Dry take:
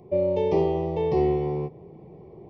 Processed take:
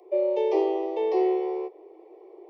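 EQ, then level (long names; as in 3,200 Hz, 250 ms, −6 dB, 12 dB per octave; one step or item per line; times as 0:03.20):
Chebyshev high-pass filter 320 Hz, order 10
0.0 dB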